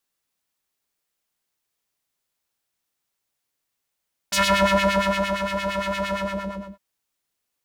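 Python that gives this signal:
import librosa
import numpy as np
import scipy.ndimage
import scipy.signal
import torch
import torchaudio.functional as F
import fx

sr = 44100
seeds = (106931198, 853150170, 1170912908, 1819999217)

y = fx.sub_patch_wobble(sr, seeds[0], note=36, wave='triangle', wave2='square', interval_st=19, level2_db=-2.0, sub_db=-11.5, noise_db=-12, kind='bandpass', cutoff_hz=460.0, q=1.4, env_oct=3.0, env_decay_s=0.27, env_sustain_pct=50, attack_ms=12.0, decay_s=1.05, sustain_db=-9.5, release_s=0.67, note_s=1.79, lfo_hz=8.7, wobble_oct=1.0)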